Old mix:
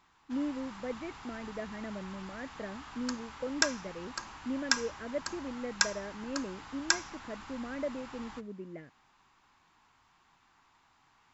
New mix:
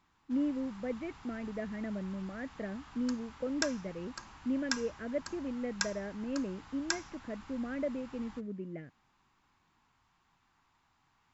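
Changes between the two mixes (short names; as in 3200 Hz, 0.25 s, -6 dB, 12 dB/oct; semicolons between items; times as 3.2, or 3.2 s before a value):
background -6.5 dB; master: add tone controls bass +6 dB, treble 0 dB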